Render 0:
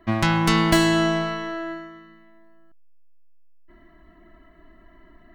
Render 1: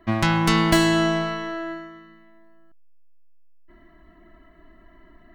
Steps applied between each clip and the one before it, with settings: nothing audible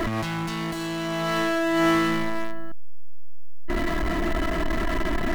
power-law curve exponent 0.5; negative-ratio compressor -23 dBFS, ratio -1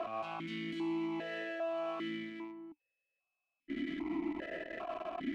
limiter -24.5 dBFS, peak gain reduction 10 dB; vowel sequencer 2.5 Hz; gain +3 dB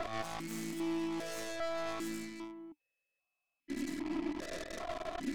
tracing distortion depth 0.42 ms

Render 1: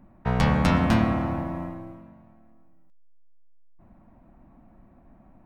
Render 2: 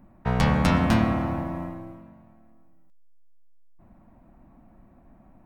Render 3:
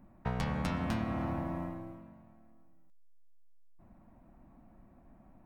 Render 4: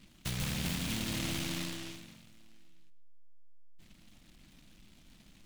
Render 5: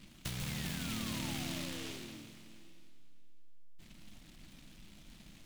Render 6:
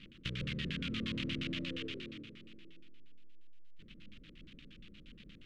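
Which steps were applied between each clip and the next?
high shelf 7100 Hz +4.5 dB
compressor 6:1, threshold -25 dBFS, peak gain reduction 9.5 dB; gain -5 dB
hard clip -28.5 dBFS, distortion -16 dB; shoebox room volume 2000 m³, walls furnished, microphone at 0.63 m; noise-modulated delay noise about 2900 Hz, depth 0.4 ms; gain -1 dB
compressor 3:1, threshold -42 dBFS, peak gain reduction 8.5 dB; painted sound fall, 0.48–2.25, 280–2200 Hz -58 dBFS; plate-style reverb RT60 2.6 s, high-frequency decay 1×, DRR 8 dB; gain +2.5 dB
added noise blue -72 dBFS; LFO low-pass square 8.5 Hz 480–3000 Hz; Butterworth band-stop 800 Hz, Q 1.1

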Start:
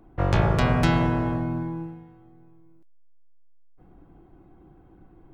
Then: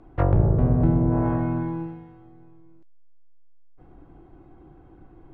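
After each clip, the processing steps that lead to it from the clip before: treble ducked by the level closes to 410 Hz, closed at -17 dBFS; Bessel low-pass 5600 Hz; bell 190 Hz -9 dB 0.23 oct; gain +3.5 dB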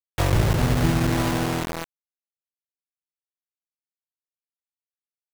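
bit-crush 4-bit; gain -1.5 dB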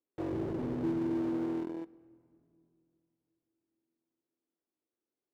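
band-pass 330 Hz, Q 3.5; power-law curve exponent 0.7; on a send at -22 dB: reverb RT60 2.6 s, pre-delay 65 ms; on the sum: gain -6 dB

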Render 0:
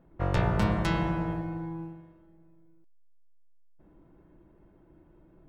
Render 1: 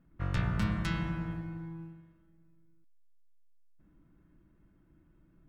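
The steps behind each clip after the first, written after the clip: band shelf 580 Hz -10.5 dB; gain -4 dB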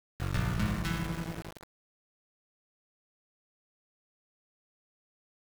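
sample gate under -35.5 dBFS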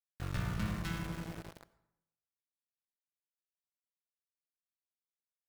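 plate-style reverb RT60 0.84 s, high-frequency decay 0.65×, pre-delay 75 ms, DRR 18 dB; gain -5.5 dB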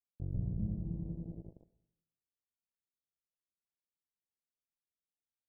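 Gaussian blur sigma 20 samples; mismatched tape noise reduction encoder only; gain +1 dB

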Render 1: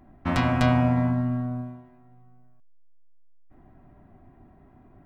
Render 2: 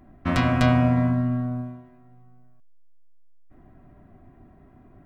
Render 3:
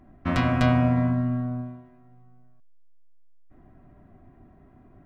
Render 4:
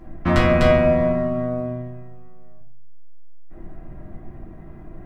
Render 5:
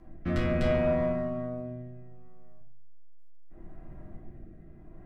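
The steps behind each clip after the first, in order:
notch 860 Hz, Q 5.1; gain +2 dB
high shelf 5900 Hz -6 dB; gain -1.5 dB
in parallel at +2.5 dB: compressor, threshold -29 dBFS, peak gain reduction 13 dB; on the sum: reverb RT60 0.45 s, pre-delay 6 ms, DRR -2 dB
rotary speaker horn 0.7 Hz; soft clip -10 dBFS, distortion -19 dB; gain -7.5 dB

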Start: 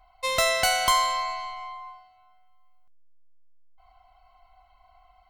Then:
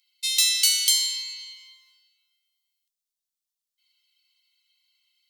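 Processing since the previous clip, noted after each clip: inverse Chebyshev high-pass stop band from 750 Hz, stop band 70 dB; gain +8.5 dB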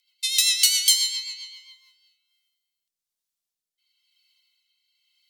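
rotary speaker horn 7.5 Hz, later 1 Hz, at 1.57; gain +3.5 dB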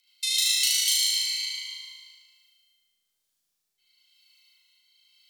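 compressor 2.5:1, threshold -33 dBFS, peak gain reduction 13 dB; on a send: flutter echo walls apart 6.4 m, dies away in 1.4 s; on the sum: gain +2.5 dB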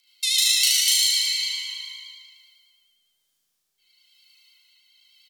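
speakerphone echo 0.37 s, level -8 dB; vibrato 9.8 Hz 34 cents; gain +4 dB

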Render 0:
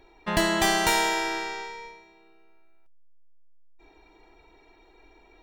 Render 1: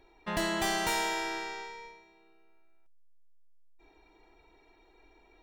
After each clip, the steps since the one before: soft clip -17.5 dBFS, distortion -16 dB; gain -5.5 dB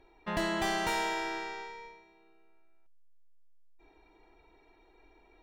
high shelf 5100 Hz -9 dB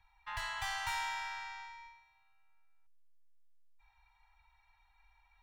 Chebyshev band-stop 120–830 Hz, order 4; gain -4 dB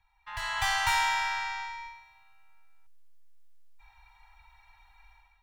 AGC gain up to 13 dB; gain -2 dB

